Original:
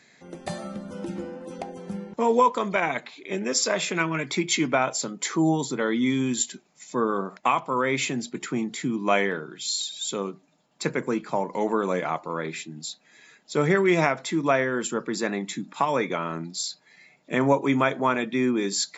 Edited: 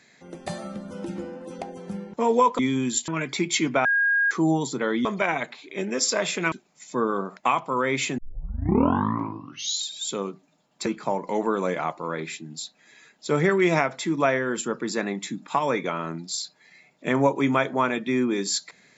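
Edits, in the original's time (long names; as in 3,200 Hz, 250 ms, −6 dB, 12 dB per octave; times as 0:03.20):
0:02.59–0:04.06: swap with 0:06.03–0:06.52
0:04.83–0:05.29: beep over 1,630 Hz −18 dBFS
0:08.18: tape start 1.65 s
0:10.86–0:11.12: remove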